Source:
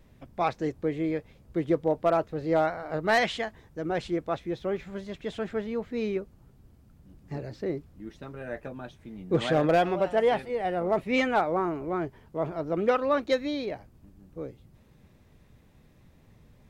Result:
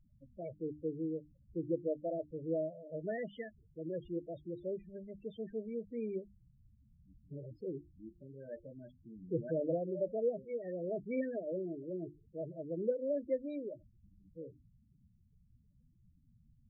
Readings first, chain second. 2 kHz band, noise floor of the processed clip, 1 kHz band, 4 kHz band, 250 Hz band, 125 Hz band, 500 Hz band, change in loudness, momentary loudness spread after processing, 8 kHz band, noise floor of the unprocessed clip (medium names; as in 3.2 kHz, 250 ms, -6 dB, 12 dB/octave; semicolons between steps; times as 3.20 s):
-23.0 dB, -69 dBFS, -25.0 dB, under -25 dB, -10.0 dB, -10.5 dB, -10.0 dB, -11.5 dB, 16 LU, no reading, -58 dBFS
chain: elliptic band-stop 620–1600 Hz, stop band 40 dB; hum notches 50/100/150/200/250/300/350 Hz; low-pass that closes with the level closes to 1.2 kHz, closed at -23.5 dBFS; loudest bins only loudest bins 8; trim -8 dB